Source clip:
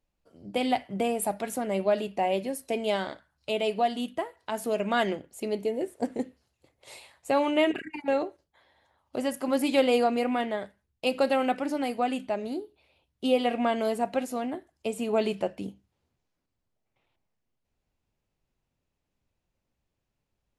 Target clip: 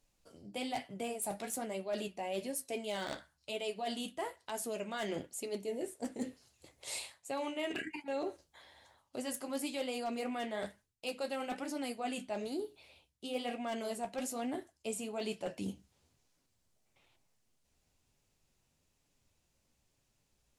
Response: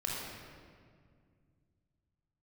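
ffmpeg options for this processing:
-af "equalizer=f=7.7k:t=o:w=2:g=11,areverse,acompressor=threshold=-39dB:ratio=6,areverse,aeval=exprs='0.0299*(abs(mod(val(0)/0.0299+3,4)-2)-1)':c=same,flanger=delay=7:depth=7.5:regen=-47:speed=1.1:shape=sinusoidal,volume=6.5dB"

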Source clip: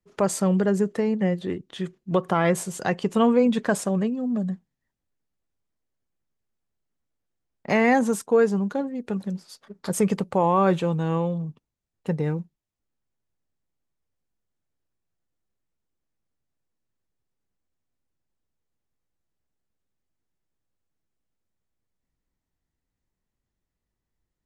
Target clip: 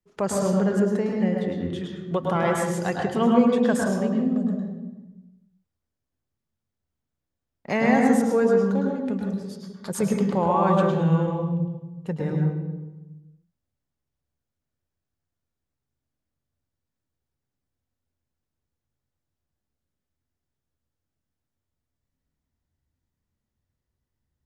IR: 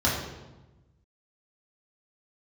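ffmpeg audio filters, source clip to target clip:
-filter_complex "[0:a]asplit=2[a][b];[1:a]atrim=start_sample=2205,adelay=105[c];[b][c]afir=irnorm=-1:irlink=0,volume=-14dB[d];[a][d]amix=inputs=2:normalize=0,volume=-3.5dB"

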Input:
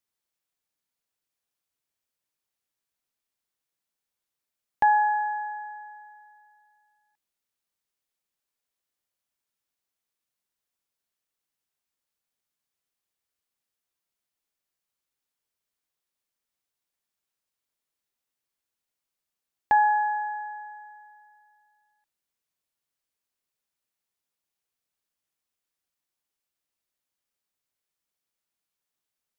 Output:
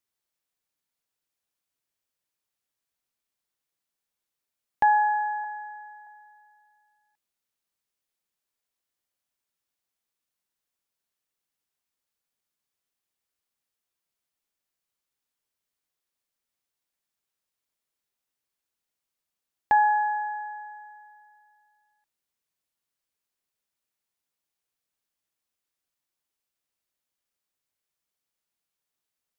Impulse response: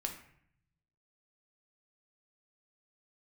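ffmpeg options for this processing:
-filter_complex "[0:a]asettb=1/sr,asplit=3[a][b][c];[a]atrim=end=5.444[d];[b]atrim=start=5.44:end=6.07,asetpts=PTS-STARTPTS,afade=t=in:d=0.004:c=qsin,afade=t=out:st=0.626:d=0.004:c=qsin,highpass=630[e];[c]atrim=start=6.066[f];[d][e]acrossfade=d=0.004:c1=hsin:c2=qsin[g];[g][f]acrossfade=d=0.004:c1=qsin:c2=hsin"

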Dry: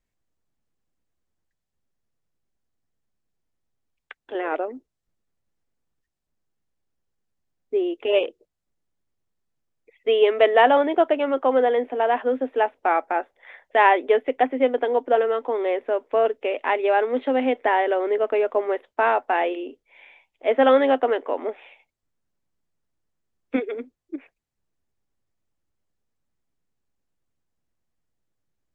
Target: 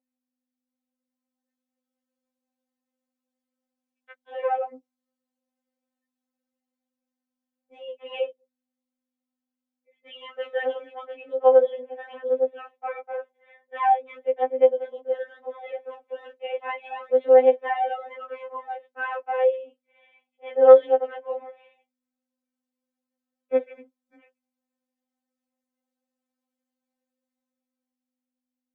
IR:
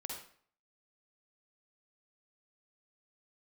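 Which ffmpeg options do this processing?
-af "dynaudnorm=f=200:g=13:m=11.5dB,aeval=exprs='val(0)+0.00282*(sin(2*PI*50*n/s)+sin(2*PI*2*50*n/s)/2+sin(2*PI*3*50*n/s)/3+sin(2*PI*4*50*n/s)/4+sin(2*PI*5*50*n/s)/5)':c=same,highpass=f=570:t=q:w=4.9,afftfilt=real='re*3.46*eq(mod(b,12),0)':imag='im*3.46*eq(mod(b,12),0)':win_size=2048:overlap=0.75,volume=-15dB"

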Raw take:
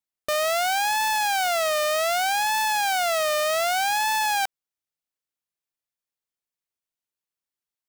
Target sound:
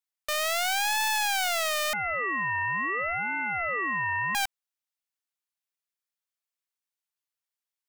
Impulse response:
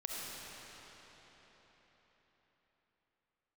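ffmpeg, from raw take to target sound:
-filter_complex "[0:a]highpass=810,aeval=exprs='clip(val(0),-1,0.0158)':c=same,asettb=1/sr,asplit=3[a][b][c];[a]atrim=end=1.934[d];[b]atrim=start=1.93:end=4.35,asetpts=PTS-STARTPTS,afade=t=in:d=0.004:c=qsin,afade=t=out:st=2.416:d=0.004:c=qsin,lowpass=f=2.3k:t=q:w=0.5098,lowpass=f=2.3k:t=q:w=0.6013,lowpass=f=2.3k:t=q:w=0.9,lowpass=f=2.3k:t=q:w=2.563,afreqshift=-2700[e];[c]atrim=start=4.346[f];[d][e]acrossfade=d=0.004:c1=hsin:c2=qsin[g];[g][f]acrossfade=d=0.004:c1=qsin:c2=hsin,volume=-1dB"

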